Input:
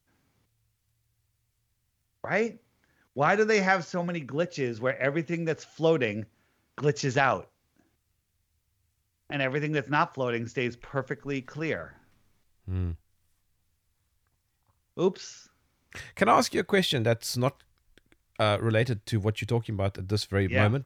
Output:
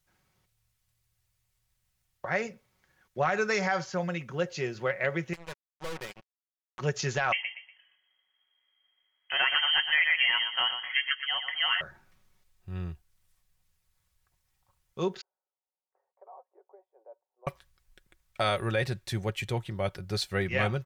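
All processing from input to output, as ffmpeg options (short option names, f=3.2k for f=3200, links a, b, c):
-filter_complex "[0:a]asettb=1/sr,asplit=3[a][b][c];[a]atrim=end=5.334[d];[b]atrim=start=5.33:end=6.79,asetpts=PTS-STARTPTS,afade=t=in:d=0.004:c=qsin,afade=t=out:st=1.456:d=0.004:c=qsin,acrusher=bits=3:mix=0:aa=0.5,aeval=exprs='(tanh(35.5*val(0)+0.35)-tanh(0.35))/35.5':c=same[e];[c]atrim=start=6.786[f];[d][e]acrossfade=d=0.004:c1=hsin:c2=qsin[g];[g][f]acrossfade=d=0.004:c1=qsin:c2=hsin,asettb=1/sr,asplit=3[h][i][j];[h]atrim=end=7.324[k];[i]atrim=start=7.32:end=11.81,asetpts=PTS-STARTPTS,afade=t=in:d=0.004:c=qsin,afade=t=out:st=4.486:d=0.004:c=qsin,equalizer=f=1.3k:t=o:w=0.43:g=15,aecho=1:1:120|240|360:0.355|0.106|0.0319,atrim=end_sample=198009,lowpass=f=2.8k:t=q:w=0.5098,lowpass=f=2.8k:t=q:w=0.6013,lowpass=f=2.8k:t=q:w=0.9,lowpass=f=2.8k:t=q:w=2.563,afreqshift=-3300[l];[j]atrim=start=11.806[m];[k][l]acrossfade=d=0.004:c1=hsin:c2=qsin[n];[n][m]acrossfade=d=0.004:c1=qsin:c2=hsin,asettb=1/sr,asplit=3[o][p][q];[o]atrim=end=15.214[r];[p]atrim=start=15.21:end=17.47,asetpts=PTS-STARTPTS,afade=t=in:d=0.004:c=qsin,afade=t=out:st=2.256:d=0.004:c=qsin,aderivative,acompressor=threshold=-38dB:ratio=6:attack=3.2:release=140:knee=1:detection=peak,asuperpass=centerf=590:order=8:qfactor=1.1[s];[q]atrim=start=17.466[t];[r][s]acrossfade=d=0.004:c1=hsin:c2=qsin[u];[u][t]acrossfade=d=0.004:c1=qsin:c2=hsin,aecho=1:1:5.4:0.45,alimiter=limit=-14.5dB:level=0:latency=1:release=87,equalizer=f=260:t=o:w=1.2:g=-9"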